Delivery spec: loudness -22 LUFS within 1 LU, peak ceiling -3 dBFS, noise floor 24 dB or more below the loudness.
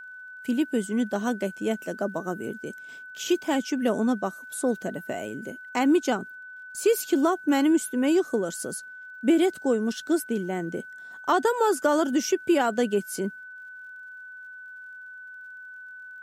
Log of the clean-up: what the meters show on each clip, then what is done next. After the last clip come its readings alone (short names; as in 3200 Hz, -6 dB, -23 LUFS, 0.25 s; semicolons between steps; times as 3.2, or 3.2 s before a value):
ticks 43/s; steady tone 1500 Hz; tone level -40 dBFS; loudness -26.0 LUFS; peak -10.0 dBFS; loudness target -22.0 LUFS
-> de-click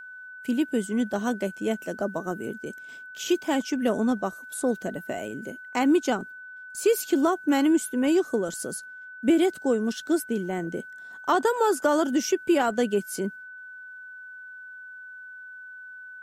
ticks 0.25/s; steady tone 1500 Hz; tone level -40 dBFS
-> notch 1500 Hz, Q 30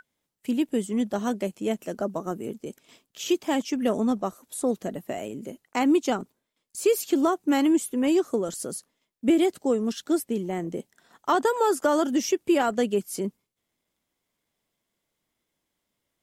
steady tone none; loudness -26.0 LUFS; peak -10.5 dBFS; loudness target -22.0 LUFS
-> gain +4 dB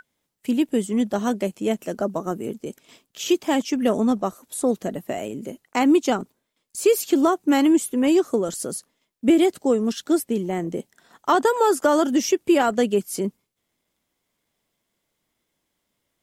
loudness -22.0 LUFS; peak -6.5 dBFS; noise floor -77 dBFS